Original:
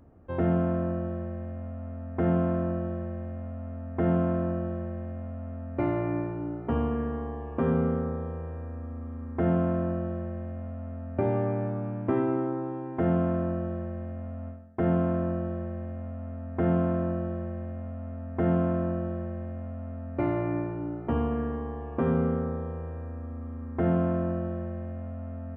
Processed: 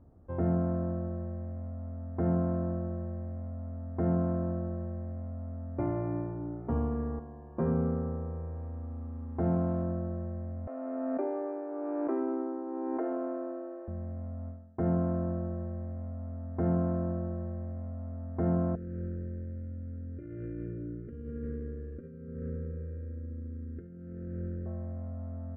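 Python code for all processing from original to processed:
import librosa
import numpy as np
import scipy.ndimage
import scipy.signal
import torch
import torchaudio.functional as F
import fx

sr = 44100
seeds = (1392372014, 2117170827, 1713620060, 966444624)

y = fx.chain(x, sr, fx.comb(ms=5.6, depth=0.62),
    fx.upward_expand(threshold_db=-35.0, expansion=1.5), at=(7.19, 7.65))
y = fx.chain(y, sr, fx.cvsd(bps=32000),
    fx.lowpass(hz=2500.0, slope=12),
    fx.peak_eq(hz=830.0, db=5.5, octaves=0.21), at=(8.55, 9.83))
y = fx.chain(y, sr, fx.cheby1_highpass(hz=260.0, order=10),
    fx.pre_swell(db_per_s=20.0), at=(10.67, 13.88))
y = fx.chain(y, sr, fx.over_compress(threshold_db=-30.0, ratio=-0.5),
    fx.tube_stage(drive_db=26.0, bias=0.55),
    fx.cheby1_bandstop(low_hz=510.0, high_hz=1500.0, order=3), at=(18.75, 24.66))
y = scipy.signal.sosfilt(scipy.signal.butter(2, 1000.0, 'lowpass', fs=sr, output='sos'), y)
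y = fx.peak_eq(y, sr, hz=430.0, db=-5.0, octaves=3.0)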